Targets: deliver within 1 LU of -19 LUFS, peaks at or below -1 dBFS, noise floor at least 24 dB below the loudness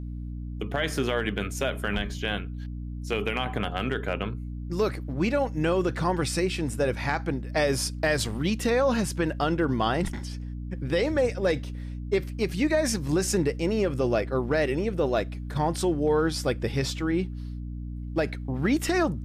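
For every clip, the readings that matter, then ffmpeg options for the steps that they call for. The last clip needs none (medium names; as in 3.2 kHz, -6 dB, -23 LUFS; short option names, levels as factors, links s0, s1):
hum 60 Hz; highest harmonic 300 Hz; hum level -32 dBFS; loudness -27.5 LUFS; peak level -13.5 dBFS; loudness target -19.0 LUFS
-> -af "bandreject=f=60:t=h:w=6,bandreject=f=120:t=h:w=6,bandreject=f=180:t=h:w=6,bandreject=f=240:t=h:w=6,bandreject=f=300:t=h:w=6"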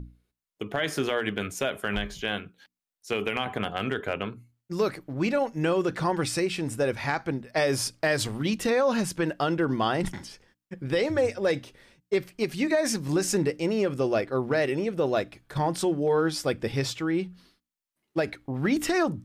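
hum not found; loudness -27.5 LUFS; peak level -14.0 dBFS; loudness target -19.0 LUFS
-> -af "volume=2.66"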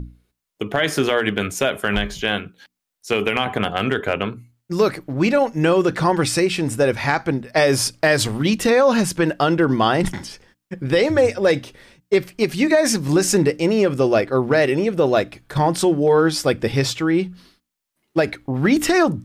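loudness -19.0 LUFS; peak level -5.5 dBFS; noise floor -79 dBFS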